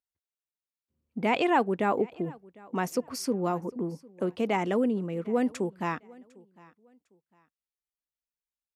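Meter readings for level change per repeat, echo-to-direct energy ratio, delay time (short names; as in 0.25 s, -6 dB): -11.0 dB, -23.5 dB, 0.753 s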